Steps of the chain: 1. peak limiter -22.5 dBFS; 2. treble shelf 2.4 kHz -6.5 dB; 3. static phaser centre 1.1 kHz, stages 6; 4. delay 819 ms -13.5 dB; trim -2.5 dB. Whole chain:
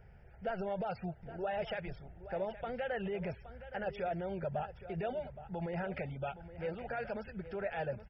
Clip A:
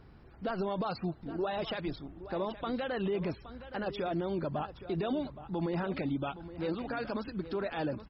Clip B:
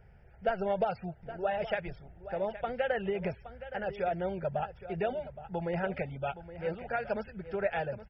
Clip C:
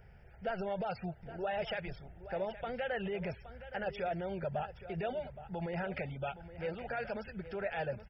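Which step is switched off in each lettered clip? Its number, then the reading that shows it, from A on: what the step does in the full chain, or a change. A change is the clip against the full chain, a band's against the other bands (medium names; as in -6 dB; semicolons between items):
3, crest factor change -3.0 dB; 1, mean gain reduction 2.0 dB; 2, 4 kHz band +3.5 dB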